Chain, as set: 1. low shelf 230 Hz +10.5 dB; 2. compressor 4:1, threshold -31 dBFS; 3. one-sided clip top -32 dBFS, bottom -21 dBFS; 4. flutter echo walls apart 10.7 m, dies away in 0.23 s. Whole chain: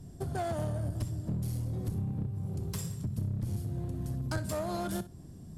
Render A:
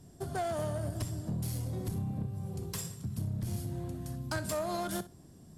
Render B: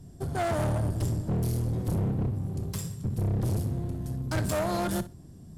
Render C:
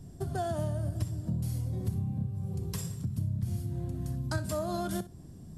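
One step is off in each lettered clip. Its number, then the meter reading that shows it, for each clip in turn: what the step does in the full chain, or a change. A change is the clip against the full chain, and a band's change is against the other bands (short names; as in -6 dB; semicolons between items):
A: 1, 125 Hz band -4.5 dB; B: 2, mean gain reduction 6.5 dB; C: 3, distortion -13 dB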